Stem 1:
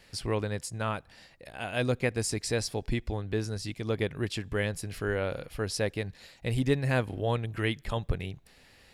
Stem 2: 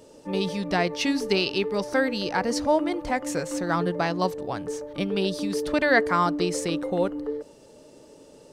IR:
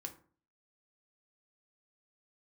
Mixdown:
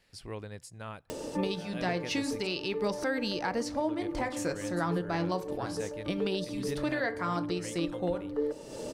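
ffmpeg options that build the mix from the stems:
-filter_complex "[0:a]bandreject=frequency=60:width_type=h:width=6,bandreject=frequency=120:width_type=h:width=6,volume=-10.5dB,asplit=3[link_01][link_02][link_03];[link_01]atrim=end=2.47,asetpts=PTS-STARTPTS,afade=type=out:start_time=2.466:duration=0.004:curve=hsin[link_04];[link_02]atrim=start=2.47:end=3.62,asetpts=PTS-STARTPTS,volume=0[link_05];[link_03]atrim=start=3.62,asetpts=PTS-STARTPTS,afade=type=in:duration=0.004:curve=hsin[link_06];[link_04][link_05][link_06]concat=n=3:v=0:a=1,asplit=2[link_07][link_08];[1:a]acompressor=mode=upward:threshold=-34dB:ratio=2.5,adelay=1100,volume=2dB,asplit=2[link_09][link_10];[link_10]volume=-5dB[link_11];[link_08]apad=whole_len=424441[link_12];[link_09][link_12]sidechaincompress=threshold=-55dB:ratio=8:attack=5.4:release=112[link_13];[2:a]atrim=start_sample=2205[link_14];[link_11][link_14]afir=irnorm=-1:irlink=0[link_15];[link_07][link_13][link_15]amix=inputs=3:normalize=0,alimiter=limit=-20.5dB:level=0:latency=1:release=399"

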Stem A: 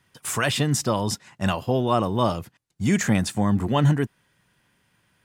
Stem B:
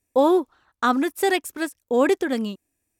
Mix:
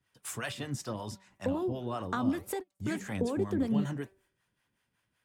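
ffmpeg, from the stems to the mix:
ffmpeg -i stem1.wav -i stem2.wav -filter_complex "[0:a]equalizer=frequency=160:width=6:gain=-7,bandreject=frequency=192.7:width_type=h:width=4,bandreject=frequency=385.4:width_type=h:width=4,bandreject=frequency=578.1:width_type=h:width=4,bandreject=frequency=770.8:width_type=h:width=4,bandreject=frequency=963.5:width_type=h:width=4,bandreject=frequency=1156.2:width_type=h:width=4,bandreject=frequency=1348.9:width_type=h:width=4,bandreject=frequency=1541.6:width_type=h:width=4,bandreject=frequency=1734.3:width_type=h:width=4,bandreject=frequency=1927:width_type=h:width=4,bandreject=frequency=2119.7:width_type=h:width=4,bandreject=frequency=2312.4:width_type=h:width=4,bandreject=frequency=2505.1:width_type=h:width=4,volume=-5dB,asplit=2[link_01][link_02];[1:a]lowshelf=frequency=500:gain=11.5,acompressor=threshold=-17dB:ratio=6,adelay=1300,volume=0.5dB[link_03];[link_02]apad=whole_len=189587[link_04];[link_03][link_04]sidechaingate=range=-46dB:threshold=-56dB:ratio=16:detection=peak[link_05];[link_01][link_05]amix=inputs=2:normalize=0,acrossover=split=250[link_06][link_07];[link_07]acompressor=threshold=-24dB:ratio=6[link_08];[link_06][link_08]amix=inputs=2:normalize=0,acrossover=split=540[link_09][link_10];[link_09]aeval=exprs='val(0)*(1-0.7/2+0.7/2*cos(2*PI*5.3*n/s))':channel_layout=same[link_11];[link_10]aeval=exprs='val(0)*(1-0.7/2-0.7/2*cos(2*PI*5.3*n/s))':channel_layout=same[link_12];[link_11][link_12]amix=inputs=2:normalize=0,flanger=delay=0.2:depth=9.6:regen=-80:speed=1.9:shape=triangular" out.wav

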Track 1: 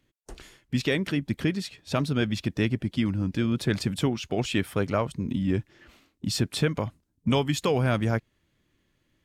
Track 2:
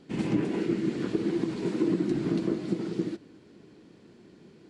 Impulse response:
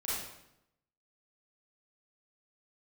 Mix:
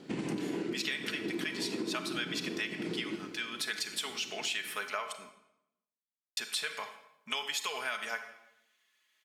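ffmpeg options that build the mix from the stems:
-filter_complex "[0:a]highpass=1400,aecho=1:1:4.7:0.54,volume=1dB,asplit=3[link_01][link_02][link_03];[link_01]atrim=end=5.29,asetpts=PTS-STARTPTS,afade=type=out:start_time=5.286:duration=0.004:curve=hsin[link_04];[link_02]atrim=start=5.29:end=6.37,asetpts=PTS-STARTPTS,volume=0[link_05];[link_03]atrim=start=6.37,asetpts=PTS-STARTPTS,afade=type=in:duration=0.004:curve=hsin[link_06];[link_04][link_05][link_06]concat=n=3:v=0:a=1,asplit=3[link_07][link_08][link_09];[link_08]volume=-11.5dB[link_10];[1:a]acompressor=threshold=-34dB:ratio=6,highpass=frequency=190:poles=1,volume=3dB,asplit=2[link_11][link_12];[link_12]volume=-7dB[link_13];[link_09]apad=whole_len=206945[link_14];[link_11][link_14]sidechaincompress=threshold=-41dB:ratio=8:attack=16:release=164[link_15];[2:a]atrim=start_sample=2205[link_16];[link_10][link_13]amix=inputs=2:normalize=0[link_17];[link_17][link_16]afir=irnorm=-1:irlink=0[link_18];[link_07][link_15][link_18]amix=inputs=3:normalize=0,acompressor=threshold=-31dB:ratio=6"

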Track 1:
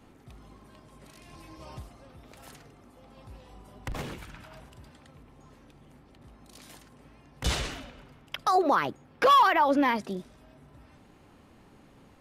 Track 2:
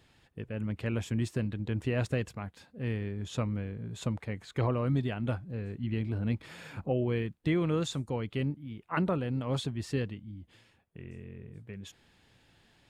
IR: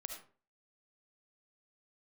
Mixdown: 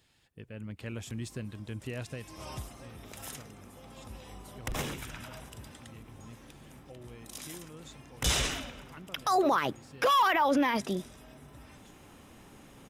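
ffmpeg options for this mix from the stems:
-filter_complex "[0:a]bandreject=frequency=4400:width=6.6,adynamicequalizer=threshold=0.00355:dfrequency=6500:dqfactor=0.7:tfrequency=6500:tqfactor=0.7:attack=5:release=100:ratio=0.375:range=2.5:mode=cutabove:tftype=highshelf,adelay=800,volume=2dB[link_01];[1:a]volume=-7.5dB,afade=type=out:start_time=1.83:duration=0.75:silence=0.237137,asplit=2[link_02][link_03];[link_03]apad=whole_len=573457[link_04];[link_01][link_04]sidechaincompress=threshold=-45dB:ratio=8:attack=7.4:release=284[link_05];[link_05][link_02]amix=inputs=2:normalize=0,highshelf=frequency=3400:gain=10.5,alimiter=limit=-18dB:level=0:latency=1:release=26"

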